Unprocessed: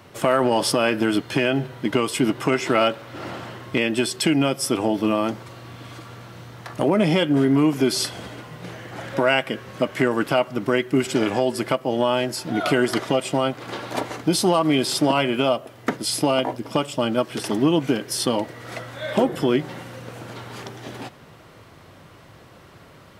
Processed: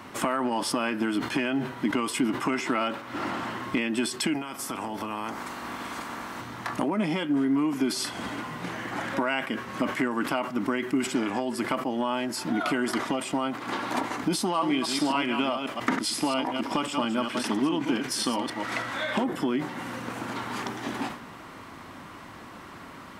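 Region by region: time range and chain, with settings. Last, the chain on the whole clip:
4.33–6.40 s: spectral peaks clipped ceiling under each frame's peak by 17 dB + peaking EQ 3.3 kHz -5 dB 1.7 oct + compression 5:1, threshold -33 dBFS
14.45–19.24 s: chunks repeated in reverse 135 ms, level -7.5 dB + low-pass 3.3 kHz 6 dB/octave + treble shelf 2 kHz +9.5 dB
whole clip: compression 3:1, threshold -32 dBFS; ten-band graphic EQ 125 Hz -7 dB, 250 Hz +10 dB, 500 Hz -5 dB, 1 kHz +8 dB, 2 kHz +4 dB, 8 kHz +3 dB; decay stretcher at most 93 dB/s

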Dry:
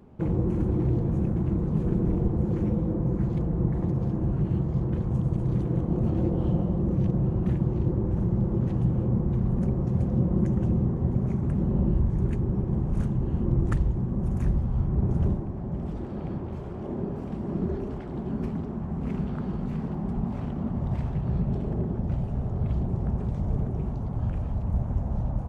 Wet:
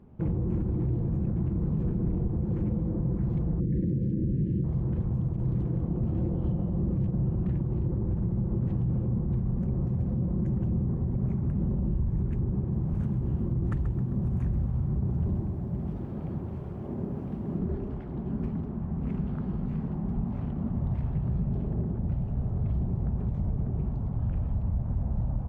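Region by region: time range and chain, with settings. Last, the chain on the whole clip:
3.60–4.64 s: Chebyshev band-stop 540–1700 Hz, order 4 + peaking EQ 260 Hz +7.5 dB 1.6 oct
12.59–17.59 s: high-pass 56 Hz + bit-crushed delay 132 ms, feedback 55%, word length 9-bit, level -11 dB
whole clip: tone controls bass +6 dB, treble -9 dB; peak limiter -15 dBFS; trim -5.5 dB

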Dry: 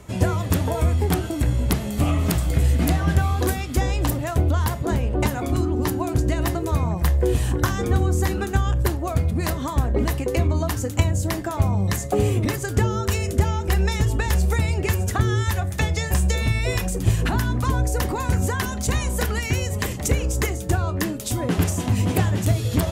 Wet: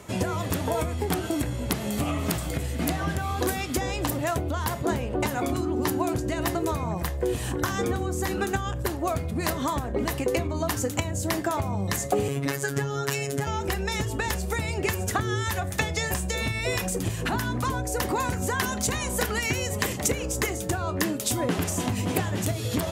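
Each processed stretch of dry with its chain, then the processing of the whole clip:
12.28–13.47 s: peaking EQ 1.6 kHz +6.5 dB 0.25 oct + robot voice 139 Hz
whole clip: compression, threshold -21 dBFS; high-pass 58 Hz; bass shelf 140 Hz -10.5 dB; trim +2.5 dB

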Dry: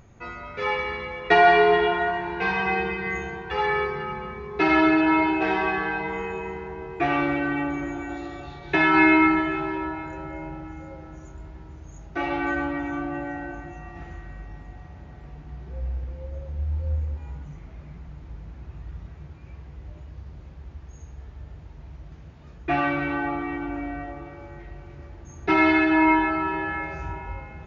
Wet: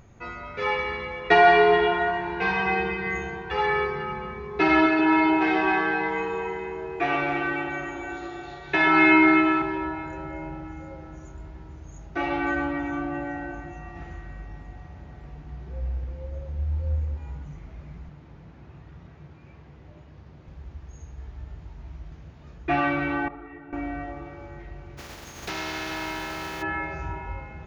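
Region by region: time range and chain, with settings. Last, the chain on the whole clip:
4.86–9.62 s: bass shelf 310 Hz -9 dB + doubling 50 ms -11.5 dB + echo whose repeats swap between lows and highs 130 ms, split 830 Hz, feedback 59%, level -3 dB
18.09–20.48 s: high-pass 120 Hz + distance through air 61 m
21.16–22.11 s: peaking EQ 510 Hz -5.5 dB 0.26 oct + doubling 18 ms -6 dB
23.28–23.73 s: treble shelf 2.5 kHz -11.5 dB + feedback comb 54 Hz, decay 0.31 s, mix 90% + detune thickener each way 35 cents
24.97–26.61 s: spectral contrast reduction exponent 0.38 + compression 4:1, threshold -31 dBFS
whole clip: none

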